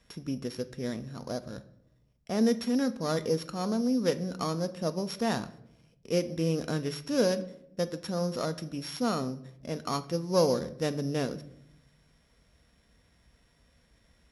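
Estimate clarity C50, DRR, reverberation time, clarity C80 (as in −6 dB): 16.0 dB, 10.0 dB, 0.80 s, 19.5 dB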